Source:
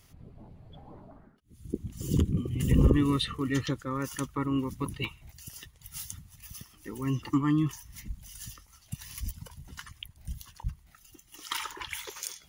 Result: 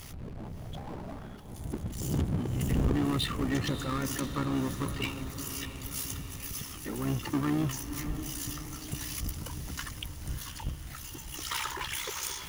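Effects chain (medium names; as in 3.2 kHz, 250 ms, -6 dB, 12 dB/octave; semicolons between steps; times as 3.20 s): AM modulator 64 Hz, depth 70%; power-law waveshaper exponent 0.5; echo that smears into a reverb 600 ms, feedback 58%, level -10 dB; trim -8 dB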